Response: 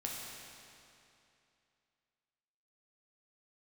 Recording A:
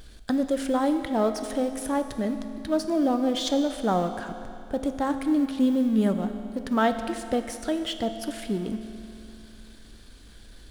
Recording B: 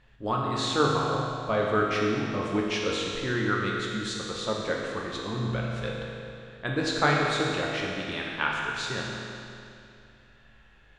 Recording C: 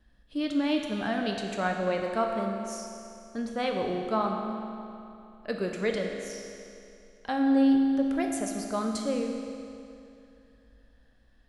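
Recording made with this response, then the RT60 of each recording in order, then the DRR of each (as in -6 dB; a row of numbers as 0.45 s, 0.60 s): B; 2.7 s, 2.7 s, 2.7 s; 7.5 dB, -3.0 dB, 1.5 dB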